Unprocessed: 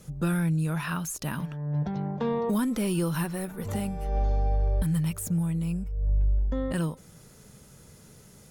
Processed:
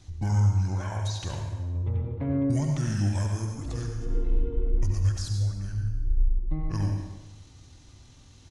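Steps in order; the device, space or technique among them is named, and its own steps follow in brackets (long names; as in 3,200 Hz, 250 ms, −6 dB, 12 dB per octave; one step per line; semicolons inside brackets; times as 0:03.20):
monster voice (pitch shifter −9 semitones; low-shelf EQ 120 Hz +4.5 dB; convolution reverb RT60 1.1 s, pre-delay 65 ms, DRR 2 dB)
level −3.5 dB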